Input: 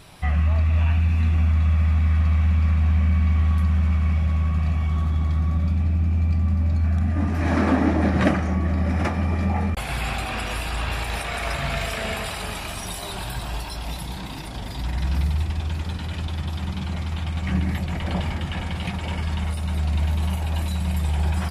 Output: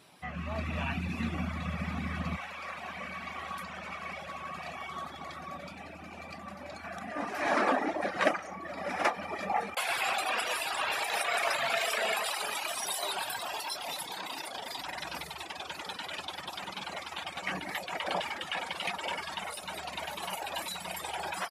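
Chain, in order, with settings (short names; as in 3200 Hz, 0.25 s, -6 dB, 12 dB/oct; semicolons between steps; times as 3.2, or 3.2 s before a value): Chebyshev high-pass 230 Hz, order 2, from 2.36 s 600 Hz; AGC gain up to 11.5 dB; reverb removal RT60 1.4 s; speakerphone echo 0.18 s, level -22 dB; gain -9 dB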